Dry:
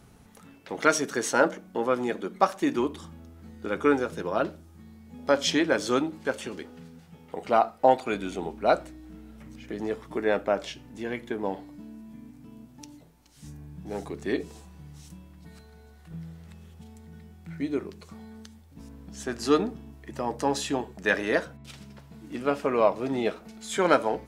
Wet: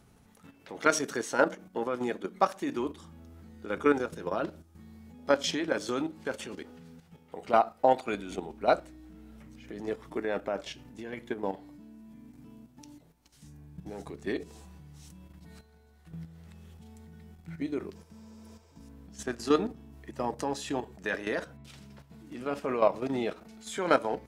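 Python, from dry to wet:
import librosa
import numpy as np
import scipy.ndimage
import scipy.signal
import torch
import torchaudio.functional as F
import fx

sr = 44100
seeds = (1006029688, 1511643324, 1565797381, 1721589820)

y = fx.spec_repair(x, sr, seeds[0], start_s=17.98, length_s=0.79, low_hz=310.0, high_hz=8800.0, source='after')
y = fx.level_steps(y, sr, step_db=10)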